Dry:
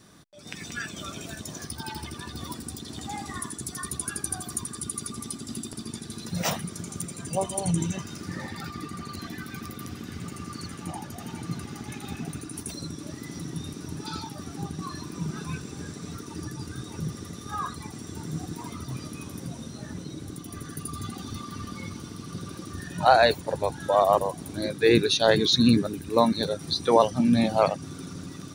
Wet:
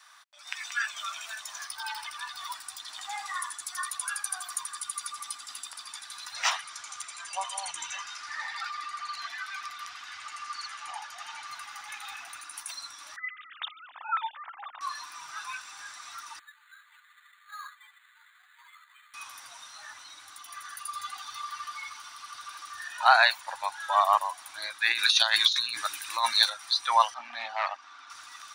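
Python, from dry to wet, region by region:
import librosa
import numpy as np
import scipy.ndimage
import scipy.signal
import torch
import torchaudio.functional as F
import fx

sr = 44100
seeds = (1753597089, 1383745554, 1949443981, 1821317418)

y = fx.chain(x, sr, fx.lowpass(hz=6400.0, slope=12),
    fx.high_shelf(hz=4600.0, db=5.5), at=(6.34, 11.48))
y = fx.chain(y, sr, fx.sine_speech(),
    fx.highpass(hz=680.0, slope=12), at=(13.16, 14.81))
y = fx.chain(y, sr, fx.ladder_bandpass(hz=2100.0, resonance_pct=50),
    fx.resample_bad(factor=8, down='filtered', up='hold'), at=(16.39, 19.14))
y = fx.chain(y, sr, fx.high_shelf(hz=2300.0, db=8.5),
    fx.over_compress(threshold_db=-21.0, ratio=-0.5), at=(24.92, 26.5))
y = fx.chain(y, sr, fx.cheby_ripple_highpass(hz=210.0, ripple_db=3),
    fx.overload_stage(gain_db=19.0),
    fx.air_absorb(metres=150.0), at=(27.14, 28.1))
y = scipy.signal.sosfilt(scipy.signal.cheby2(4, 40, 480.0, 'highpass', fs=sr, output='sos'), y)
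y = fx.high_shelf(y, sr, hz=4200.0, db=-10.0)
y = y * 10.0 ** (6.5 / 20.0)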